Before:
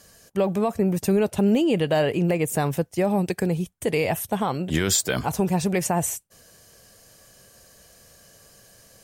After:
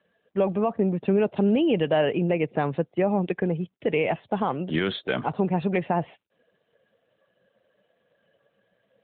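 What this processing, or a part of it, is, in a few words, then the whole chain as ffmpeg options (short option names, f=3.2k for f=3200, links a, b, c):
mobile call with aggressive noise cancelling: -af "highpass=170,afftdn=nr=13:nf=-46" -ar 8000 -c:a libopencore_amrnb -b:a 12200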